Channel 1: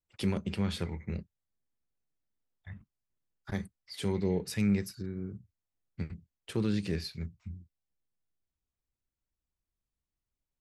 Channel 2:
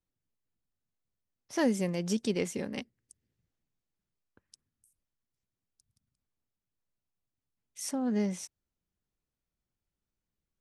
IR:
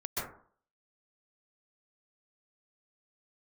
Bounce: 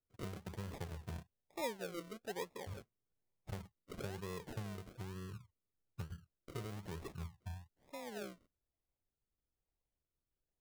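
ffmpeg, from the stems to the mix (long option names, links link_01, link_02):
-filter_complex "[0:a]acompressor=threshold=-36dB:ratio=8,volume=-2.5dB[link_01];[1:a]bandpass=frequency=500:width_type=q:width=0.69:csg=0,volume=-9.5dB[link_02];[link_01][link_02]amix=inputs=2:normalize=0,equalizer=frequency=125:width_type=o:width=1:gain=3,equalizer=frequency=250:width_type=o:width=1:gain=-12,equalizer=frequency=500:width_type=o:width=1:gain=5,equalizer=frequency=1000:width_type=o:width=1:gain=-3,equalizer=frequency=2000:width_type=o:width=1:gain=-9,equalizer=frequency=4000:width_type=o:width=1:gain=4,equalizer=frequency=8000:width_type=o:width=1:gain=-8,acrusher=samples=41:mix=1:aa=0.000001:lfo=1:lforange=24.6:lforate=1.1"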